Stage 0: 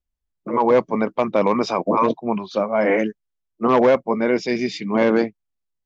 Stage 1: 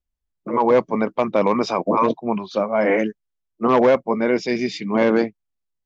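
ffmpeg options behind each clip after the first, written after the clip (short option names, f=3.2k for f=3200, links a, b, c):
-af anull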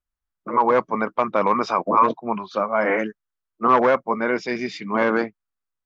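-af "equalizer=f=1.3k:w=1.2:g=12,volume=-5.5dB"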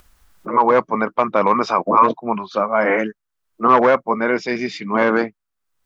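-af "acompressor=mode=upward:threshold=-34dB:ratio=2.5,volume=3.5dB"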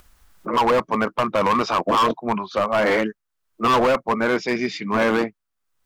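-af "asoftclip=type=hard:threshold=-14dB"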